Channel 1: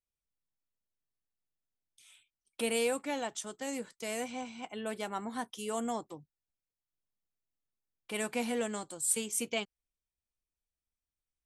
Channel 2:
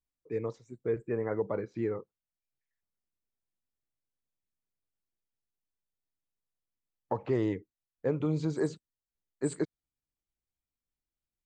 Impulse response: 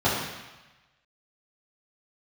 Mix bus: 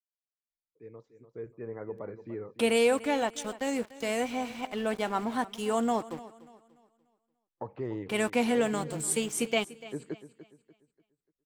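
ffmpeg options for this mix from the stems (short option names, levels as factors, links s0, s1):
-filter_complex "[0:a]aeval=exprs='val(0)*gte(abs(val(0)),0.00447)':c=same,volume=0.75,asplit=3[s0][s1][s2];[s1]volume=0.126[s3];[1:a]adelay=500,volume=0.15,asplit=2[s4][s5];[s5]volume=0.224[s6];[s2]apad=whole_len=527142[s7];[s4][s7]sidechaincompress=threshold=0.0126:ratio=8:attack=16:release=390[s8];[s3][s6]amix=inputs=2:normalize=0,aecho=0:1:293|586|879|1172|1465:1|0.35|0.122|0.0429|0.015[s9];[s0][s8][s9]amix=inputs=3:normalize=0,highshelf=f=5100:g=-10.5,dynaudnorm=f=250:g=11:m=3.16"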